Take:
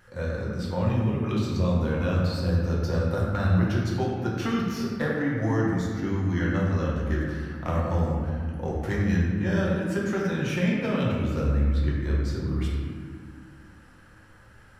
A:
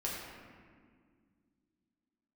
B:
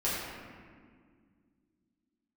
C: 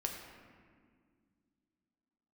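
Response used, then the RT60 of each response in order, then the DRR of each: A; 1.9, 1.9, 1.9 seconds; −5.0, −9.5, 1.0 decibels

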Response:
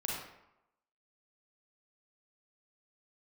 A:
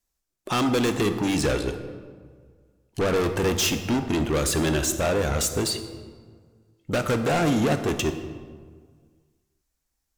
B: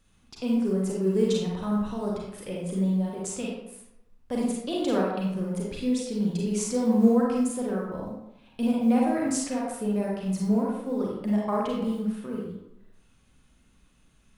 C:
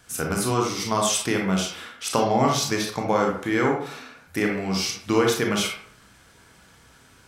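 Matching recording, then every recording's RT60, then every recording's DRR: B; 1.7, 0.85, 0.60 seconds; 7.0, −4.0, 0.0 decibels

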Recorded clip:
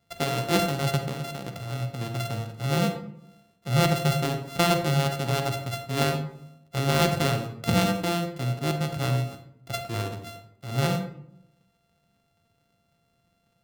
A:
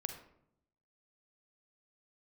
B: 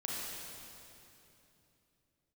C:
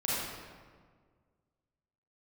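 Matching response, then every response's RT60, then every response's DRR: A; 0.75, 3.0, 1.7 seconds; 6.0, −5.0, −8.5 decibels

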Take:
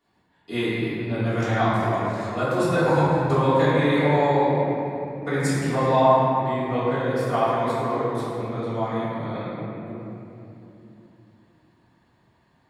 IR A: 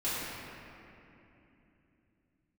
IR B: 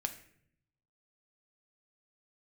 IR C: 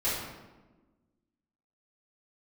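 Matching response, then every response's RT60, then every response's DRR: A; 3.0, 0.65, 1.2 seconds; −13.0, 5.5, −11.5 decibels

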